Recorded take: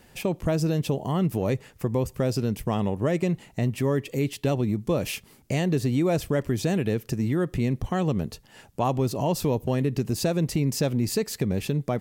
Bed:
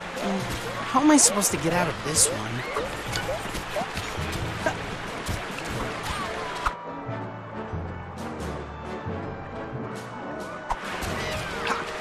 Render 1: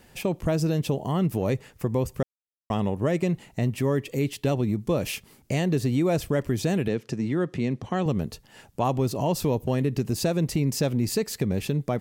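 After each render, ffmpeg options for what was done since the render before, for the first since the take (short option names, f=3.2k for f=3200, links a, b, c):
-filter_complex "[0:a]asettb=1/sr,asplit=3[a][b][c];[a]atrim=end=6.884[d];[b]atrim=start=6.88:end=8.06,asetpts=PTS-STARTPTS,afade=t=in:d=0.004:c=qsin,afade=t=out:st=1.176:d=0.004:c=qsin,highpass=140,lowpass=6.4k[e];[c]atrim=start=8.056[f];[d][e]acrossfade=d=0.004:c1=hsin:c2=qsin[g];[g][f]acrossfade=d=0.004:c1=qsin:c2=hsin,asplit=3[h][i][j];[h]atrim=end=2.23,asetpts=PTS-STARTPTS,afade=t=out:st=2.226:d=0.004:c=hsin[k];[i]atrim=start=2.23:end=2.7,asetpts=PTS-STARTPTS,volume=0[l];[j]atrim=start=2.7,asetpts=PTS-STARTPTS,afade=t=in:d=0.004:c=hsin[m];[k][l][m]concat=n=3:v=0:a=1"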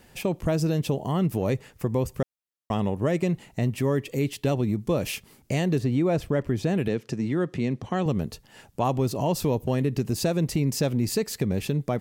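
-filter_complex "[0:a]asettb=1/sr,asplit=3[a][b][c];[a]atrim=end=5.784[d];[b]atrim=start=5.78:end=6.78,asetpts=PTS-STARTPTS,afade=t=in:d=0.004:c=qsin,afade=t=out:st=0.996:d=0.004:c=qsin,highshelf=f=4.6k:g=-11.5[e];[c]atrim=start=6.776[f];[d][e]acrossfade=d=0.004:c1=hsin:c2=qsin[g];[g][f]acrossfade=d=0.004:c1=qsin:c2=hsin"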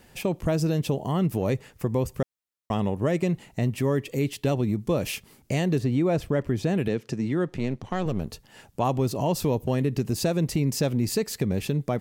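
-filter_complex "[0:a]asettb=1/sr,asplit=3[a][b][c];[a]atrim=end=7.484[d];[b]atrim=start=7.48:end=8.3,asetpts=PTS-STARTPTS,afade=t=in:d=0.004:c=qsin,afade=t=out:st=0.816:d=0.004:c=qsin,aeval=exprs='if(lt(val(0),0),0.447*val(0),val(0))':c=same[e];[c]atrim=start=8.296[f];[d][e]acrossfade=d=0.004:c1=hsin:c2=qsin[g];[g][f]acrossfade=d=0.004:c1=qsin:c2=hsin"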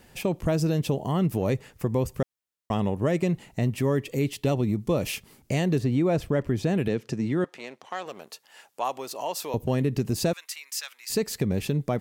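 -filter_complex "[0:a]asettb=1/sr,asplit=3[a][b][c];[a]atrim=end=4.304[d];[b]atrim=start=4.3:end=5.09,asetpts=PTS-STARTPTS,afade=t=in:d=0.004:c=qsin,afade=t=out:st=0.786:d=0.004:c=qsin,bandreject=f=1.6k:w=12[e];[c]atrim=start=5.086[f];[d][e]acrossfade=d=0.004:c1=hsin:c2=qsin[g];[g][f]acrossfade=d=0.004:c1=qsin:c2=hsin,asettb=1/sr,asplit=3[h][i][j];[h]atrim=end=7.444[k];[i]atrim=start=7.44:end=9.54,asetpts=PTS-STARTPTS,afade=t=in:d=0.004:c=qsin,afade=t=out:st=2.096:d=0.004:c=qsin,highpass=690[l];[j]atrim=start=9.536[m];[k][l]acrossfade=d=0.004:c1=hsin:c2=qsin[n];[n][m]acrossfade=d=0.004:c1=qsin:c2=hsin,asettb=1/sr,asplit=3[o][p][q];[o]atrim=end=10.334[r];[p]atrim=start=10.33:end=11.1,asetpts=PTS-STARTPTS,afade=t=in:d=0.004:c=qsin,afade=t=out:st=0.766:d=0.004:c=qsin,highpass=f=1.3k:w=0.5412,highpass=f=1.3k:w=1.3066[s];[q]atrim=start=11.096[t];[r][s]acrossfade=d=0.004:c1=hsin:c2=qsin[u];[u][t]acrossfade=d=0.004:c1=qsin:c2=hsin"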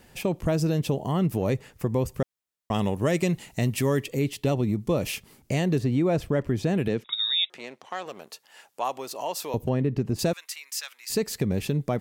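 -filter_complex "[0:a]asettb=1/sr,asplit=3[a][b][c];[a]atrim=end=2.744[d];[b]atrim=start=2.74:end=4.06,asetpts=PTS-STARTPTS,afade=t=in:d=0.004:c=qsin,afade=t=out:st=1.316:d=0.004:c=qsin,equalizer=f=14k:t=o:w=2.9:g=9.5[e];[c]atrim=start=4.056[f];[d][e]acrossfade=d=0.004:c1=hsin:c2=qsin[g];[g][f]acrossfade=d=0.004:c1=qsin:c2=hsin,asettb=1/sr,asplit=3[h][i][j];[h]atrim=end=7.044[k];[i]atrim=start=7.04:end=7.5,asetpts=PTS-STARTPTS,afade=t=in:d=0.004:c=qsin,afade=t=out:st=0.456:d=0.004:c=qsin,lowpass=f=3.3k:t=q:w=0.5098,lowpass=f=3.3k:t=q:w=0.6013,lowpass=f=3.3k:t=q:w=0.9,lowpass=f=3.3k:t=q:w=2.563,afreqshift=-3900[l];[j]atrim=start=7.496[m];[k][l]acrossfade=d=0.004:c1=hsin:c2=qsin[n];[n][m]acrossfade=d=0.004:c1=qsin:c2=hsin,asettb=1/sr,asplit=3[o][p][q];[o]atrim=end=9.694[r];[p]atrim=start=9.69:end=10.19,asetpts=PTS-STARTPTS,afade=t=in:d=0.004:c=qsin,afade=t=out:st=0.496:d=0.004:c=qsin,lowpass=f=1.7k:p=1[s];[q]atrim=start=10.186[t];[r][s]acrossfade=d=0.004:c1=hsin:c2=qsin[u];[u][t]acrossfade=d=0.004:c1=qsin:c2=hsin"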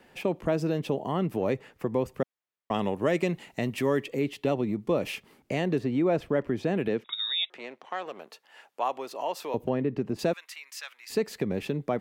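-filter_complex "[0:a]acrossover=split=200 3500:gain=0.224 1 0.251[a][b][c];[a][b][c]amix=inputs=3:normalize=0"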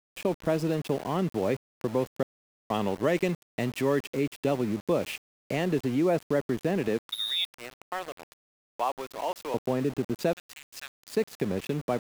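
-af "aeval=exprs='val(0)*gte(abs(val(0)),0.0141)':c=same"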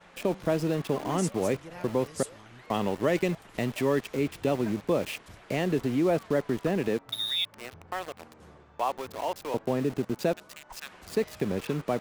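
-filter_complex "[1:a]volume=-20dB[a];[0:a][a]amix=inputs=2:normalize=0"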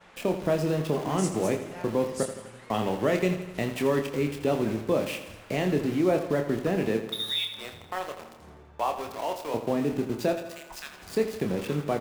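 -filter_complex "[0:a]asplit=2[a][b];[b]adelay=27,volume=-7dB[c];[a][c]amix=inputs=2:normalize=0,aecho=1:1:83|166|249|332|415|498|581:0.282|0.163|0.0948|0.055|0.0319|0.0185|0.0107"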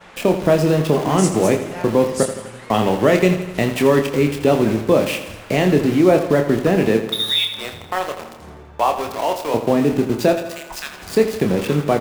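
-af "volume=10.5dB"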